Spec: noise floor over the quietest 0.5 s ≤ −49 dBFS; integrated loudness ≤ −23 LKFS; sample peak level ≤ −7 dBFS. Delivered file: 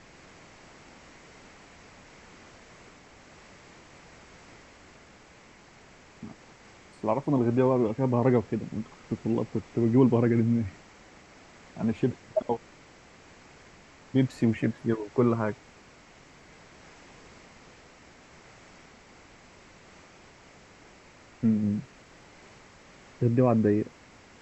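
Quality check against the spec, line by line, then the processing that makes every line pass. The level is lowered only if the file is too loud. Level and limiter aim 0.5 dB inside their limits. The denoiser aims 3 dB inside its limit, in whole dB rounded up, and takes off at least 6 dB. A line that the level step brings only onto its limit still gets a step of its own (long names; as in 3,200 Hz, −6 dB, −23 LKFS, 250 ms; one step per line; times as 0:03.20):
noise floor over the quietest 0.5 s −54 dBFS: in spec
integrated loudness −27.0 LKFS: in spec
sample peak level −10.0 dBFS: in spec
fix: no processing needed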